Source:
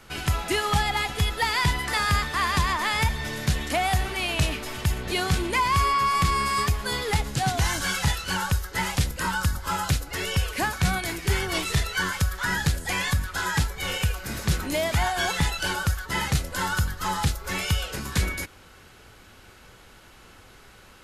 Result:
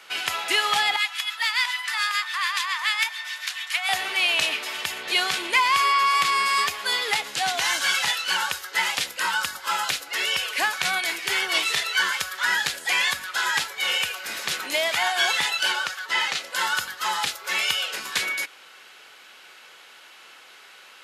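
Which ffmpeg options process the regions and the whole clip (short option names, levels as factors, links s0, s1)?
-filter_complex "[0:a]asettb=1/sr,asplit=3[s0][s1][s2];[s0]atrim=end=0.964[s3];[s1]atrim=start=0.96:end=3.89,asetpts=PTS-STARTPTS,afade=t=in:d=0.004:c=qsin,afade=t=out:st=2.926:d=0.004:c=qsin,highpass=f=1000:w=0.5412,highpass=f=1000:w=1.3066,acrossover=split=1200[s4][s5];[s4]aeval=exprs='val(0)*(1-0.7/2+0.7/2*cos(2*PI*7*n/s))':c=same[s6];[s5]aeval=exprs='val(0)*(1-0.7/2-0.7/2*cos(2*PI*7*n/s))':c=same[s7];[s6][s7]amix=inputs=2:normalize=0[s8];[s2]atrim=start=3.886[s9];[s3][s8]acrossfade=d=0.004:c1=hsin:c2=qsin[s10];[s10][s9]acrossfade=d=0.004:c1=qsin:c2=hsin,asettb=1/sr,asplit=3[s11][s12][s13];[s11]atrim=end=15.724[s14];[s12]atrim=start=15.72:end=16.53,asetpts=PTS-STARTPTS,afade=t=in:d=0.004:c=qsin,afade=t=out:st=0.806:d=0.004:c=qsin,acrossover=split=7200[s15][s16];[s16]acompressor=threshold=0.00316:ratio=4:attack=1:release=60[s17];[s15][s17]amix=inputs=2:normalize=0,highpass=f=220:p=1[s18];[s13]atrim=start=16.526[s19];[s14][s18]acrossfade=d=0.004:c1=hsin:c2=qsin[s20];[s20][s19]acrossfade=d=0.004:c1=qsin:c2=hsin,highpass=530,equalizer=f=2900:w=0.73:g=8"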